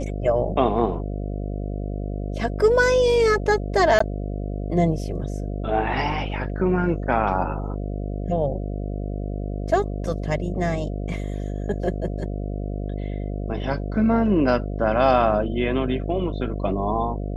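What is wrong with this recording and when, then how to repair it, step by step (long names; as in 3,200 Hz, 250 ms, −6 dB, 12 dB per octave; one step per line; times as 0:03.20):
mains buzz 50 Hz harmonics 14 −28 dBFS
0:03.99–0:04.00: drop-out 14 ms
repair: hum removal 50 Hz, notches 14
repair the gap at 0:03.99, 14 ms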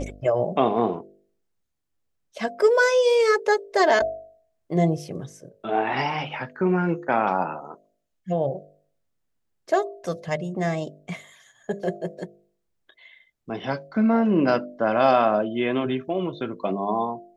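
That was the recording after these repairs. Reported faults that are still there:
none of them is left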